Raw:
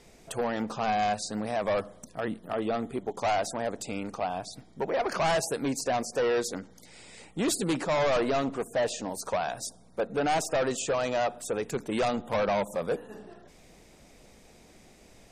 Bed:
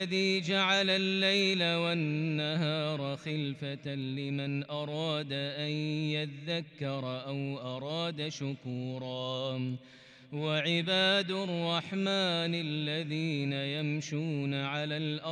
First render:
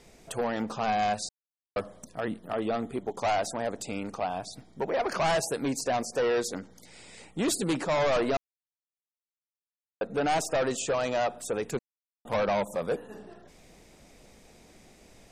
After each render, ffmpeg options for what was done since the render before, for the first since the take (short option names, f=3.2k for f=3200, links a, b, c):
-filter_complex "[0:a]asplit=7[a][b][c][d][e][f][g];[a]atrim=end=1.29,asetpts=PTS-STARTPTS,afade=t=out:st=1.286:d=0.004:c=hsin[h];[b]atrim=start=1.29:end=1.76,asetpts=PTS-STARTPTS,volume=0[i];[c]atrim=start=1.76:end=8.37,asetpts=PTS-STARTPTS,afade=t=in:d=0.004:c=hsin,afade=t=out:st=6.606:d=0.004:c=hsin[j];[d]atrim=start=8.37:end=10.01,asetpts=PTS-STARTPTS,volume=0[k];[e]atrim=start=10.01:end=11.79,asetpts=PTS-STARTPTS,afade=t=in:d=0.004:c=hsin,afade=t=out:st=1.776:d=0.004:c=hsin[l];[f]atrim=start=11.79:end=12.25,asetpts=PTS-STARTPTS,volume=0[m];[g]atrim=start=12.25,asetpts=PTS-STARTPTS,afade=t=in:d=0.004:c=hsin[n];[h][i][j][k][l][m][n]concat=n=7:v=0:a=1"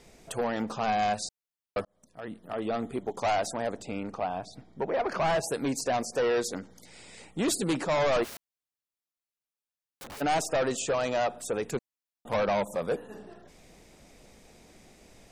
-filter_complex "[0:a]asplit=3[a][b][c];[a]afade=t=out:st=3.77:d=0.02[d];[b]lowpass=f=2.6k:p=1,afade=t=in:st=3.77:d=0.02,afade=t=out:st=5.43:d=0.02[e];[c]afade=t=in:st=5.43:d=0.02[f];[d][e][f]amix=inputs=3:normalize=0,asplit=3[g][h][i];[g]afade=t=out:st=8.23:d=0.02[j];[h]aeval=exprs='(mod(79.4*val(0)+1,2)-1)/79.4':c=same,afade=t=in:st=8.23:d=0.02,afade=t=out:st=10.2:d=0.02[k];[i]afade=t=in:st=10.2:d=0.02[l];[j][k][l]amix=inputs=3:normalize=0,asplit=2[m][n];[m]atrim=end=1.85,asetpts=PTS-STARTPTS,afade=t=out:st=1.846:d=0.004:c=hsin[o];[n]atrim=start=1.85,asetpts=PTS-STARTPTS,afade=t=in:d=0.99[p];[o][p]concat=n=2:v=0:a=1"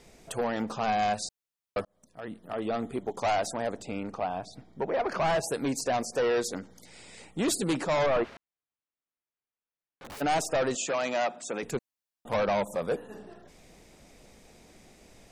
-filter_complex "[0:a]asettb=1/sr,asplit=3[a][b][c];[a]atrim=end=8.064[d];[b]atrim=start=8.06:end=10.05,asetpts=PTS-STARTPTS,afade=t=in:d=0.004:c=qsin,afade=t=out:st=1.986:d=0.004:c=qsin,lowpass=2.4k[e];[c]atrim=start=10.046[f];[d][e]acrossfade=d=0.004:c1=hsin:c2=qsin[g];[g][f]acrossfade=d=0.004:c1=qsin:c2=hsin,asettb=1/sr,asplit=3[h][i][j];[h]atrim=end=10.754[k];[i]atrim=start=10.75:end=11.63,asetpts=PTS-STARTPTS,afade=t=in:d=0.004:c=qsin,afade=t=out:st=0.876:d=0.004:c=qsin,highpass=f=170:w=0.5412,highpass=f=170:w=1.3066,equalizer=f=450:t=q:w=4:g=-7,equalizer=f=2.2k:t=q:w=4:g=5,equalizer=f=6.9k:t=q:w=4:g=4,lowpass=f=7.5k:w=0.5412,lowpass=f=7.5k:w=1.3066[l];[j]atrim=start=11.626[m];[k][l]acrossfade=d=0.004:c1=hsin:c2=qsin[n];[n][m]acrossfade=d=0.004:c1=qsin:c2=hsin"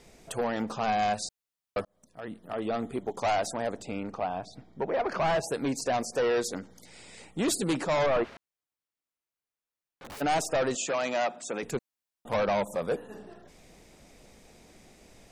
-filter_complex "[0:a]asettb=1/sr,asplit=3[a][b][c];[a]atrim=end=3.964[d];[b]atrim=start=3.96:end=5.82,asetpts=PTS-STARTPTS,afade=t=in:d=0.004:c=qsin,afade=t=out:st=1.856:d=0.004:c=qsin,equalizer=f=12k:t=o:w=1.2:g=-5.5[e];[c]atrim=start=5.816[f];[d][e]acrossfade=d=0.004:c1=hsin:c2=qsin[g];[g][f]acrossfade=d=0.004:c1=qsin:c2=hsin"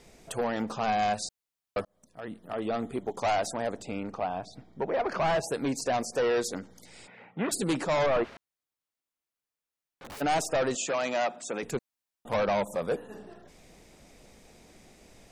-filter_complex "[0:a]asplit=3[a][b][c];[a]afade=t=out:st=7.06:d=0.02[d];[b]highpass=f=120:w=0.5412,highpass=f=120:w=1.3066,equalizer=f=330:t=q:w=4:g=-10,equalizer=f=840:t=q:w=4:g=4,equalizer=f=1.5k:t=q:w=4:g=6,lowpass=f=2.5k:w=0.5412,lowpass=f=2.5k:w=1.3066,afade=t=in:st=7.06:d=0.02,afade=t=out:st=7.51:d=0.02[e];[c]afade=t=in:st=7.51:d=0.02[f];[d][e][f]amix=inputs=3:normalize=0"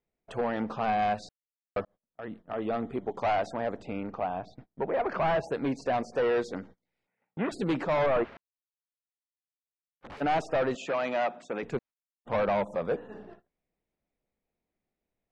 -af "lowpass=2.7k,agate=range=-31dB:threshold=-47dB:ratio=16:detection=peak"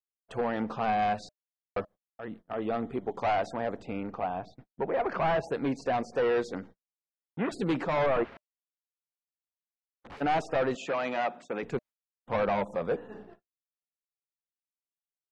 -af "agate=range=-33dB:threshold=-43dB:ratio=3:detection=peak,bandreject=f=610:w=20"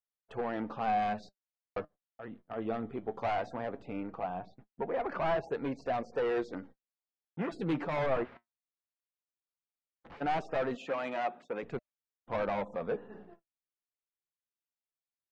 -af "flanger=delay=1.4:depth=8.2:regen=65:speed=0.17:shape=triangular,adynamicsmooth=sensitivity=5:basefreq=4.6k"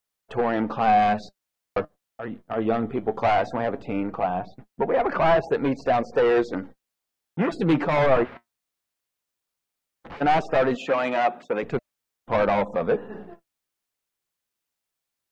-af "volume=11.5dB"